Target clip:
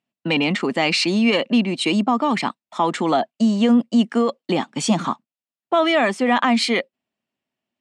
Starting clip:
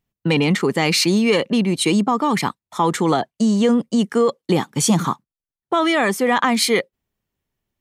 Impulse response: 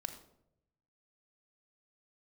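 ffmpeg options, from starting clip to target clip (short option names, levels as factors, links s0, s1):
-af "highpass=220,equalizer=f=240:t=q:w=4:g=7,equalizer=f=440:t=q:w=4:g=-5,equalizer=f=650:t=q:w=4:g=7,equalizer=f=2700:t=q:w=4:g=6,equalizer=f=6300:t=q:w=4:g=-6,lowpass=f=7600:w=0.5412,lowpass=f=7600:w=1.3066,volume=0.794"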